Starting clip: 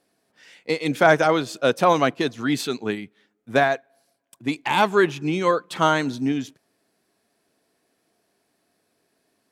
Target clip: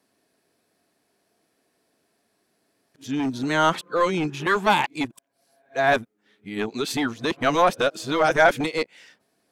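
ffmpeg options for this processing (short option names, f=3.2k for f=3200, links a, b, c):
-filter_complex "[0:a]areverse,acrossover=split=560|1200[a][b][c];[a]aeval=exprs='0.0944*(abs(mod(val(0)/0.0944+3,4)-2)-1)':c=same[d];[d][b][c]amix=inputs=3:normalize=0"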